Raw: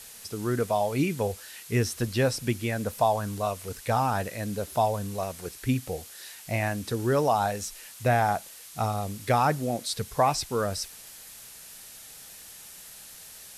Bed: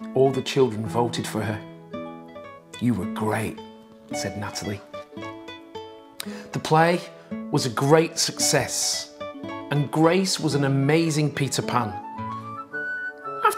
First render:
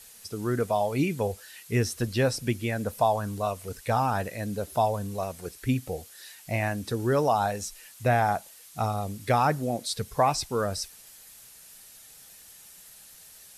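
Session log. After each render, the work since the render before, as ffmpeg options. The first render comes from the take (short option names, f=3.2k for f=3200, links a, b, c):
-af "afftdn=nr=6:nf=-47"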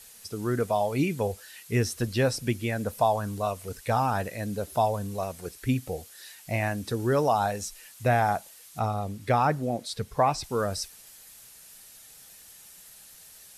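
-filter_complex "[0:a]asettb=1/sr,asplit=3[a][b][c];[a]atrim=end=8.794[d];[b]atrim=start=8.79:end=10.44,asetpts=PTS-STARTPTS,afade=t=in:d=0.004:c=qsin,afade=t=out:st=1.646:d=0.004:c=qsin,highshelf=f=4.5k:g=-8[e];[c]atrim=start=10.436[f];[d][e]acrossfade=d=0.004:c1=hsin:c2=qsin[g];[g][f]acrossfade=d=0.004:c1=qsin:c2=hsin"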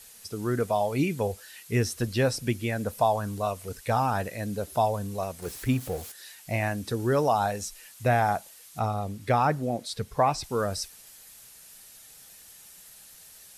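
-filter_complex "[0:a]asettb=1/sr,asplit=3[a][b][c];[a]atrim=end=5.424[d];[b]atrim=start=5.42:end=6.12,asetpts=PTS-STARTPTS,afade=t=in:d=0.004:c=qsin,afade=t=out:st=0.696:d=0.004:c=qsin,aeval=exprs='val(0)+0.5*0.0106*sgn(val(0))':c=same[e];[c]atrim=start=6.116[f];[d][e]acrossfade=d=0.004:c1=hsin:c2=qsin[g];[g][f]acrossfade=d=0.004:c1=qsin:c2=hsin"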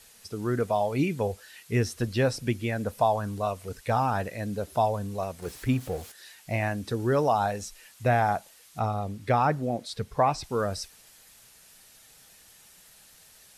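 -af "highshelf=f=6.9k:g=-8"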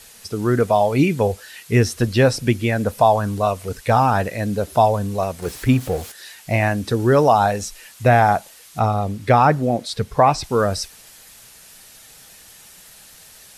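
-af "volume=9.5dB,alimiter=limit=-3dB:level=0:latency=1"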